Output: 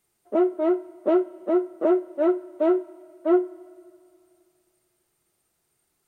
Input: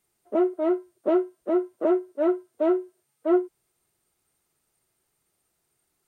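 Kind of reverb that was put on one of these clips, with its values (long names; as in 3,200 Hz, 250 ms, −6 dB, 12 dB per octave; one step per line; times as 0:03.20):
four-comb reverb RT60 2.4 s, combs from 33 ms, DRR 19.5 dB
level +1.5 dB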